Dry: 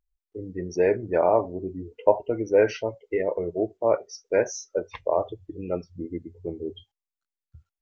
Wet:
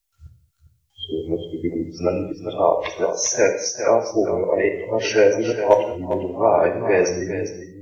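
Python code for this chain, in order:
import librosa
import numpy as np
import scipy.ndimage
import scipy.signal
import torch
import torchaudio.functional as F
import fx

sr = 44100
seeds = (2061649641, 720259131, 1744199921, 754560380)

p1 = np.flip(x).copy()
p2 = fx.high_shelf(p1, sr, hz=2400.0, db=11.5)
p3 = fx.rider(p2, sr, range_db=5, speed_s=0.5)
p4 = p2 + F.gain(torch.from_numpy(p3), 1.0).numpy()
p5 = np.clip(p4, -10.0 ** (0.0 / 20.0), 10.0 ** (0.0 / 20.0))
p6 = p5 + fx.echo_single(p5, sr, ms=403, db=-10.5, dry=0)
p7 = fx.rev_gated(p6, sr, seeds[0], gate_ms=250, shape='falling', drr_db=5.5)
y = F.gain(torch.from_numpy(p7), -2.5).numpy()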